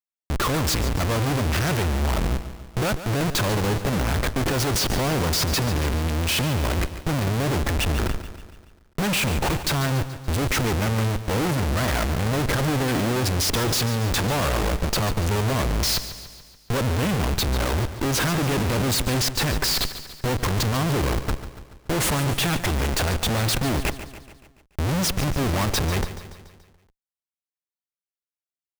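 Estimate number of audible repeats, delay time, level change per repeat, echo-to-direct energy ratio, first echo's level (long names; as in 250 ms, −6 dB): 5, 143 ms, −5.0 dB, −11.0 dB, −12.5 dB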